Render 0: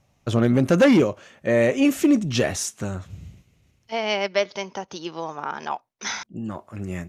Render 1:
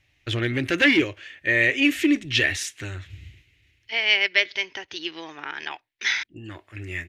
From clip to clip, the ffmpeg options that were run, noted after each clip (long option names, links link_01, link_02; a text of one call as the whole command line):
ffmpeg -i in.wav -af "firequalizer=gain_entry='entry(100,0);entry(200,-19);entry(300,1);entry(520,-10);entry(1200,-7);entry(1800,12);entry(3400,9);entry(6000,-3)':delay=0.05:min_phase=1,volume=-1.5dB" out.wav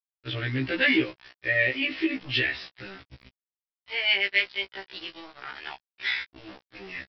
ffmpeg -i in.wav -af "aresample=11025,aeval=exprs='val(0)*gte(abs(val(0)),0.0168)':channel_layout=same,aresample=44100,afftfilt=real='re*1.73*eq(mod(b,3),0)':imag='im*1.73*eq(mod(b,3),0)':win_size=2048:overlap=0.75,volume=-2dB" out.wav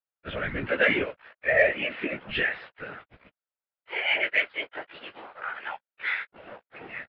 ffmpeg -i in.wav -af "highpass=140,equalizer=frequency=310:width_type=q:width=4:gain=-8,equalizer=frequency=560:width_type=q:width=4:gain=9,equalizer=frequency=840:width_type=q:width=4:gain=4,equalizer=frequency=1400:width_type=q:width=4:gain=8,lowpass=frequency=2700:width=0.5412,lowpass=frequency=2700:width=1.3066,afftfilt=real='hypot(re,im)*cos(2*PI*random(0))':imag='hypot(re,im)*sin(2*PI*random(1))':win_size=512:overlap=0.75,acontrast=34" out.wav